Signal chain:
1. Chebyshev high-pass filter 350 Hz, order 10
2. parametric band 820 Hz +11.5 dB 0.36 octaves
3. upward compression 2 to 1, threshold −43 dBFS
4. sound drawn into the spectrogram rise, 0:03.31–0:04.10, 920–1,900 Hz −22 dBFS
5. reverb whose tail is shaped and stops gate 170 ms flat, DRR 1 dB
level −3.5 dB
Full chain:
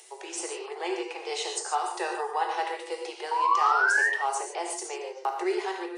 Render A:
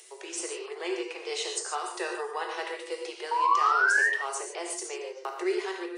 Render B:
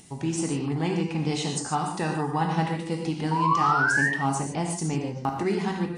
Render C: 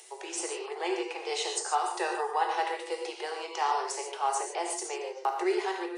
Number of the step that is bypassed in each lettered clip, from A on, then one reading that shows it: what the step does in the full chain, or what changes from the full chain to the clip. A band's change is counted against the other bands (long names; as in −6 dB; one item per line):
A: 2, 1 kHz band −2.0 dB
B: 1, 250 Hz band +13.0 dB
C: 4, 2 kHz band −10.5 dB